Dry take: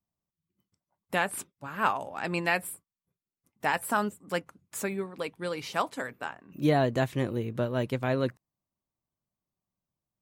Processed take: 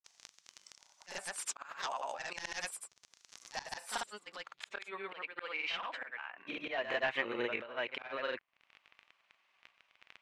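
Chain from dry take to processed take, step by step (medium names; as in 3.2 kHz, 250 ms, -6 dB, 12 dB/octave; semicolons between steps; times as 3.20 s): high-pass 840 Hz 12 dB/octave; crackle 18 per s -54 dBFS; sine folder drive 11 dB, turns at -13 dBFS; low-pass sweep 6.2 kHz -> 2.5 kHz, 3.63–5.39 s; pre-echo 59 ms -14 dB; slow attack 795 ms; granulator, pitch spread up and down by 0 st; compression 2:1, threshold -38 dBFS, peak gain reduction 9.5 dB; tape noise reduction on one side only encoder only; trim +1.5 dB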